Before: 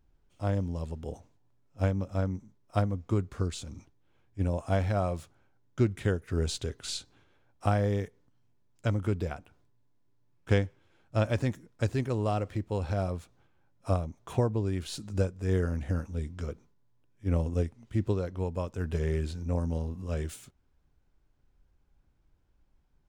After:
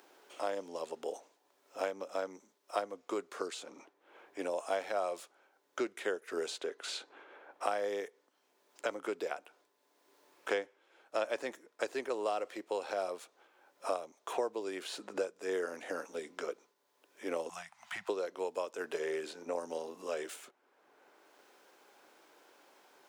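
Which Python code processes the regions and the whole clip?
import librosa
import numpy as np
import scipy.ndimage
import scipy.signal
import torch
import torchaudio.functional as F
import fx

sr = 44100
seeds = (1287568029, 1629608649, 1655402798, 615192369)

y = fx.chain(x, sr, fx.cheby2_bandstop(low_hz=250.0, high_hz=520.0, order=4, stop_db=40),
    fx.band_squash(depth_pct=100), at=(17.49, 18.09))
y = scipy.signal.sosfilt(scipy.signal.butter(4, 400.0, 'highpass', fs=sr, output='sos'), y)
y = fx.band_squash(y, sr, depth_pct=70)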